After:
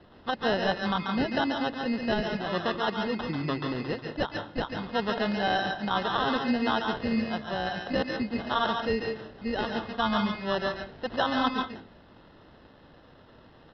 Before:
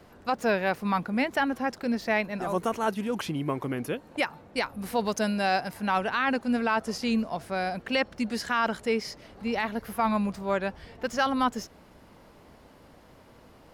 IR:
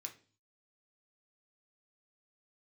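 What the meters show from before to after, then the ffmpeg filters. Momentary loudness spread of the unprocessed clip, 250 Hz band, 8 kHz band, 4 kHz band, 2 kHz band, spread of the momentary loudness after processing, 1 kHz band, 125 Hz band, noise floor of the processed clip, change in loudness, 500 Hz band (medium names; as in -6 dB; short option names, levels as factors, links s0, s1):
6 LU, -0.5 dB, under -10 dB, +3.5 dB, -1.5 dB, 7 LU, -1.0 dB, +1.0 dB, -55 dBFS, -0.5 dB, -0.5 dB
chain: -filter_complex "[0:a]acrusher=samples=19:mix=1:aa=0.000001,asplit=2[s0][s1];[1:a]atrim=start_sample=2205,adelay=140[s2];[s1][s2]afir=irnorm=-1:irlink=0,volume=1.26[s3];[s0][s3]amix=inputs=2:normalize=0,aresample=11025,aresample=44100,volume=0.841"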